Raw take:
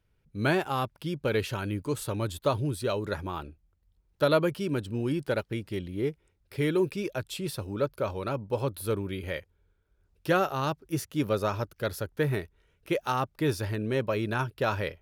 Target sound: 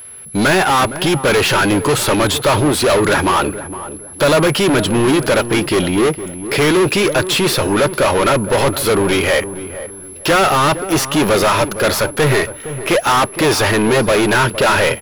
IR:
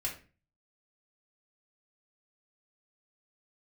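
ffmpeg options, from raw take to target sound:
-filter_complex "[0:a]asplit=2[a][b];[b]highpass=f=720:p=1,volume=36dB,asoftclip=type=tanh:threshold=-12dB[c];[a][c]amix=inputs=2:normalize=0,lowpass=f=4.2k:p=1,volume=-6dB,aeval=exprs='val(0)+0.0158*sin(2*PI*11000*n/s)':c=same,aeval=exprs='sgn(val(0))*max(abs(val(0))-0.00316,0)':c=same,asplit=2[d][e];[e]adelay=463,lowpass=f=920:p=1,volume=-11dB,asplit=2[f][g];[g]adelay=463,lowpass=f=920:p=1,volume=0.32,asplit=2[h][i];[i]adelay=463,lowpass=f=920:p=1,volume=0.32[j];[d][f][h][j]amix=inputs=4:normalize=0,asplit=2[k][l];[1:a]atrim=start_sample=2205[m];[l][m]afir=irnorm=-1:irlink=0,volume=-24.5dB[n];[k][n]amix=inputs=2:normalize=0,volume=6dB"

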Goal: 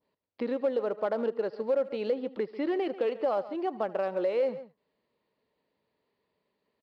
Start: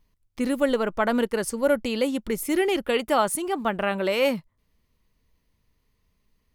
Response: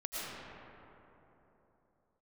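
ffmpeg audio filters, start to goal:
-filter_complex "[0:a]aresample=11025,asoftclip=type=hard:threshold=-16.5dB,aresample=44100,adynamicequalizer=threshold=0.00891:dfrequency=3100:dqfactor=0.7:tfrequency=3100:tqfactor=0.7:attack=5:release=100:ratio=0.375:range=3:mode=cutabove:tftype=bell,asetrate=42336,aresample=44100,equalizer=f=550:w=0.95:g=12,asplit=2[a][b];[b]adelay=139.9,volume=-17dB,highshelf=f=4k:g=-3.15[c];[a][c]amix=inputs=2:normalize=0,asplit=2[d][e];[e]aeval=exprs='sgn(val(0))*max(abs(val(0))-0.0282,0)':c=same,volume=-11dB[f];[d][f]amix=inputs=2:normalize=0,highpass=210[g];[1:a]atrim=start_sample=2205,atrim=end_sample=3528[h];[g][h]afir=irnorm=-1:irlink=0,acompressor=threshold=-32dB:ratio=2,volume=-1.5dB"

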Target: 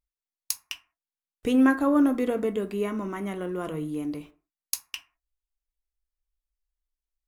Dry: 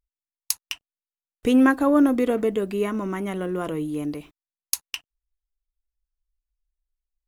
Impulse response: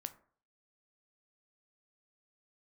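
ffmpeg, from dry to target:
-filter_complex "[1:a]atrim=start_sample=2205,afade=t=out:st=0.27:d=0.01,atrim=end_sample=12348,asetrate=48510,aresample=44100[a];[0:a][a]afir=irnorm=-1:irlink=0"

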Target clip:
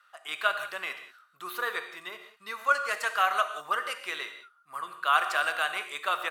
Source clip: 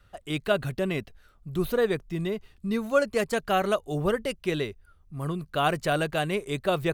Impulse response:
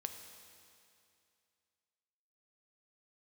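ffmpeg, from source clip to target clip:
-filter_complex "[0:a]highpass=f=1.2k:t=q:w=2.6,atempo=1.1[a];[1:a]atrim=start_sample=2205,atrim=end_sample=6615,asetrate=32634,aresample=44100[b];[a][b]afir=irnorm=-1:irlink=0"

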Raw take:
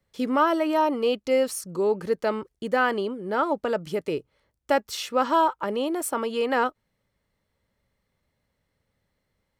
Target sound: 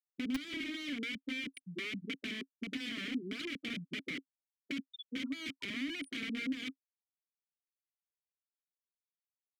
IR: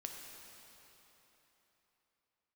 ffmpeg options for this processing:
-filter_complex "[0:a]afftfilt=real='re*gte(hypot(re,im),0.126)':imag='im*gte(hypot(re,im),0.126)':win_size=1024:overlap=0.75,areverse,acompressor=threshold=-29dB:ratio=10,areverse,aeval=exprs='(mod(37.6*val(0)+1,2)-1)/37.6':c=same,asplit=3[a][b][c];[a]bandpass=f=270:t=q:w=8,volume=0dB[d];[b]bandpass=f=2.29k:t=q:w=8,volume=-6dB[e];[c]bandpass=f=3.01k:t=q:w=8,volume=-9dB[f];[d][e][f]amix=inputs=3:normalize=0,asplit=2[g][h];[h]acrusher=bits=5:mix=0:aa=0.000001,volume=-4dB[i];[g][i]amix=inputs=2:normalize=0,acrossover=split=160[j][k];[k]acompressor=threshold=-56dB:ratio=2.5[l];[j][l]amix=inputs=2:normalize=0,volume=16dB"

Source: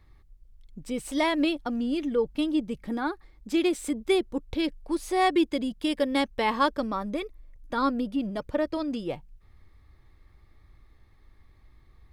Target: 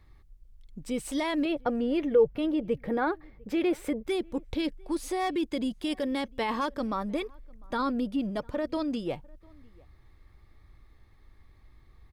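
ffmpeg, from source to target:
-filter_complex "[0:a]asoftclip=type=hard:threshold=-14.5dB,alimiter=limit=-21.5dB:level=0:latency=1:release=11,asettb=1/sr,asplit=3[a][b][c];[a]atrim=end=1.454[d];[b]atrim=start=1.45:end=4.08,asetpts=PTS-STARTPTS,afade=t=in:d=0.004:c=qsin,afade=t=out:st=2.626:d=0.004:c=qsin,equalizer=f=125:t=o:w=1:g=11,equalizer=f=250:t=o:w=1:g=-6,equalizer=f=500:t=o:w=1:g=10,equalizer=f=2k:t=o:w=1:g=5,equalizer=f=4k:t=o:w=1:g=-4,equalizer=f=8k:t=o:w=1:g=-11[e];[c]atrim=start=4.076[f];[d][e]acrossfade=d=0.004:c1=hsin:c2=qsin[g];[g][f]acrossfade=d=0.004:c1=qsin:c2=hsin,asplit=2[h][i];[i]adelay=699.7,volume=-27dB,highshelf=f=4k:g=-15.7[j];[h][j]amix=inputs=2:normalize=0"

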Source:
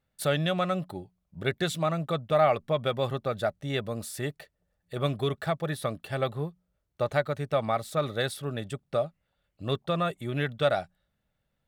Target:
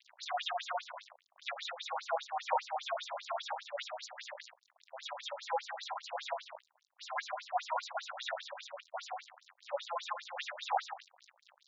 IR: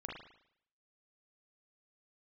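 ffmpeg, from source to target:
-filter_complex "[0:a]aeval=exprs='val(0)+0.5*0.0168*sgn(val(0))':c=same[a];[1:a]atrim=start_sample=2205[b];[a][b]afir=irnorm=-1:irlink=0,aeval=exprs='val(0)*sin(2*PI*160*n/s)':c=same,aphaser=in_gain=1:out_gain=1:delay=5:decay=0.5:speed=0.48:type=sinusoidal,highpass=f=200:p=1,equalizer=f=5k:w=0.32:g=2,acrusher=bits=5:mix=0:aa=0.5,afftfilt=real='re*between(b*sr/1024,680*pow(5400/680,0.5+0.5*sin(2*PI*5*pts/sr))/1.41,680*pow(5400/680,0.5+0.5*sin(2*PI*5*pts/sr))*1.41)':imag='im*between(b*sr/1024,680*pow(5400/680,0.5+0.5*sin(2*PI*5*pts/sr))/1.41,680*pow(5400/680,0.5+0.5*sin(2*PI*5*pts/sr))*1.41)':win_size=1024:overlap=0.75"

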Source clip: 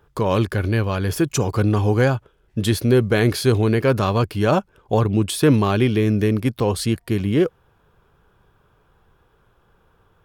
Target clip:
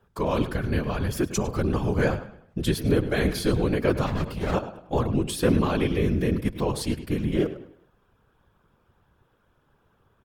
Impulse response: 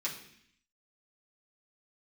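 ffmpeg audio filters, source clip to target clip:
-filter_complex "[0:a]asplit=2[a][b];[b]adelay=103,lowpass=f=4.8k:p=1,volume=-12.5dB,asplit=2[c][d];[d]adelay=103,lowpass=f=4.8k:p=1,volume=0.37,asplit=2[e][f];[f]adelay=103,lowpass=f=4.8k:p=1,volume=0.37,asplit=2[g][h];[h]adelay=103,lowpass=f=4.8k:p=1,volume=0.37[i];[a][c][e][g][i]amix=inputs=5:normalize=0,asettb=1/sr,asplit=3[j][k][l];[j]atrim=end=4.064[m];[k]atrim=start=4.06:end=4.54,asetpts=PTS-STARTPTS,afade=t=in:d=0.004:c=qsin,afade=t=out:st=0.476:d=0.004:c=qsin,aeval=exprs='clip(val(0),-1,0.0531)':c=same[n];[l]atrim=start=4.536[o];[m][n]acrossfade=d=0.004:c1=hsin:c2=qsin[p];[p][o]acrossfade=d=0.004:c1=qsin:c2=hsin,afftfilt=real='hypot(re,im)*cos(2*PI*random(0))':imag='hypot(re,im)*sin(2*PI*random(1))':win_size=512:overlap=0.75"

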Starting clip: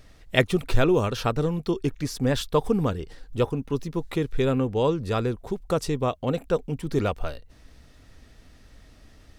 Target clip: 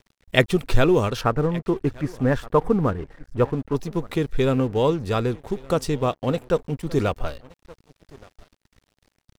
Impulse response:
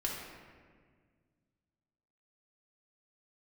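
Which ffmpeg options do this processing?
-filter_complex "[0:a]asettb=1/sr,asplit=3[a][b][c];[a]atrim=end=1.214[d];[b]atrim=start=1.21:end=3.75,asetpts=PTS-STARTPTS,afade=t=in:d=0.004:c=qsin,afade=t=out:st=2.536:d=0.004:c=qsin,highshelf=f=2.5k:t=q:w=1.5:g=-13[e];[c]atrim=start=3.746[f];[d][e]acrossfade=d=0.004:c1=hsin:c2=qsin[g];[g][f]acrossfade=d=0.004:c1=qsin:c2=hsin,aecho=1:1:1172:0.0944,aeval=exprs='sgn(val(0))*max(abs(val(0))-0.00531,0)':c=same,volume=3dB"

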